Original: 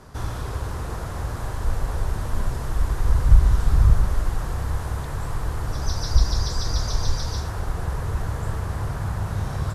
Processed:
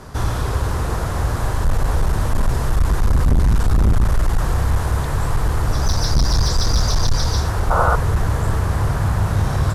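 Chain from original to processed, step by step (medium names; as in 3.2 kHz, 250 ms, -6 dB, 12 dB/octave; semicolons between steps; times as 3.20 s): hard clipper -19.5 dBFS, distortion -5 dB; painted sound noise, 7.70–7.96 s, 450–1500 Hz -26 dBFS; trim +8.5 dB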